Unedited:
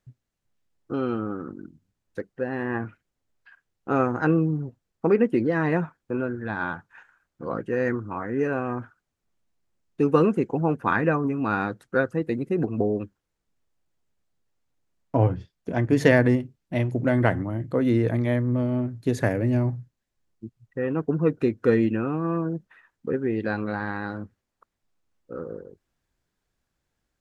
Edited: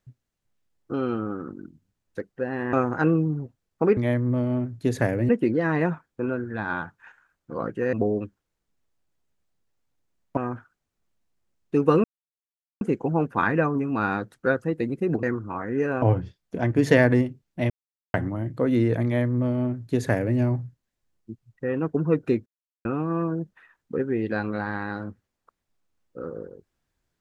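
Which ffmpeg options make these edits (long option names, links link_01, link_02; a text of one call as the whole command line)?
ffmpeg -i in.wav -filter_complex "[0:a]asplit=13[link_01][link_02][link_03][link_04][link_05][link_06][link_07][link_08][link_09][link_10][link_11][link_12][link_13];[link_01]atrim=end=2.732[link_14];[link_02]atrim=start=3.958:end=5.202[link_15];[link_03]atrim=start=18.188:end=19.512[link_16];[link_04]atrim=start=5.198:end=7.842[link_17];[link_05]atrim=start=12.718:end=15.162[link_18];[link_06]atrim=start=8.628:end=10.3,asetpts=PTS-STARTPTS,afade=type=out:start_time=1.668:duration=0.004:curve=hsin,apad=pad_dur=0.77[link_19];[link_07]atrim=start=10.3:end=12.722,asetpts=PTS-STARTPTS,afade=type=in:duration=0.004:curve=hsin[link_20];[link_08]atrim=start=7.838:end=8.632[link_21];[link_09]atrim=start=15.158:end=16.84,asetpts=PTS-STARTPTS,afade=type=out:start_time=1.678:duration=0.004:curve=hsin[link_22];[link_10]atrim=start=16.84:end=17.28,asetpts=PTS-STARTPTS,volume=0[link_23];[link_11]atrim=start=17.28:end=21.6,asetpts=PTS-STARTPTS,afade=type=in:duration=0.004:curve=hsin,afade=type=out:start_time=4.316:duration=0.004:curve=hsin[link_24];[link_12]atrim=start=21.6:end=21.99,asetpts=PTS-STARTPTS,volume=0[link_25];[link_13]atrim=start=21.99,asetpts=PTS-STARTPTS,afade=type=in:duration=0.004:curve=hsin[link_26];[link_14][link_15]acrossfade=duration=0.004:curve1=hsin:curve2=hsin[link_27];[link_27][link_16]acrossfade=duration=0.004:curve1=hsin:curve2=hsin[link_28];[link_28][link_17]acrossfade=duration=0.004:curve1=hsin:curve2=hsin[link_29];[link_29][link_18]acrossfade=duration=0.004:curve1=hsin:curve2=hsin[link_30];[link_19][link_20]concat=n=2:v=0:a=1[link_31];[link_30][link_31]acrossfade=duration=0.004:curve1=hsin:curve2=hsin[link_32];[link_32][link_21]acrossfade=duration=0.004:curve1=hsin:curve2=hsin[link_33];[link_22][link_23][link_24][link_25][link_26]concat=n=5:v=0:a=1[link_34];[link_33][link_34]acrossfade=duration=0.004:curve1=hsin:curve2=hsin" out.wav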